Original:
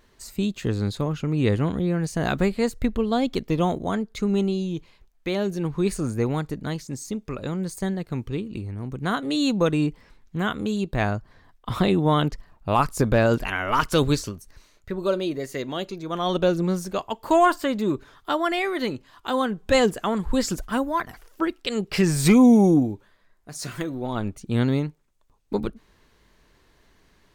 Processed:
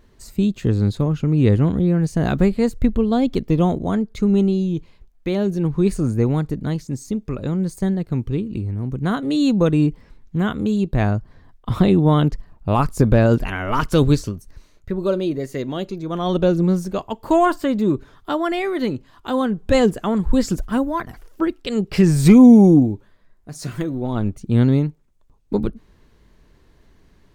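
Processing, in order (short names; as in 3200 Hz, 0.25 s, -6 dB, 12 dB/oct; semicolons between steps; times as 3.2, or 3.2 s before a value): low shelf 470 Hz +10.5 dB; gain -2 dB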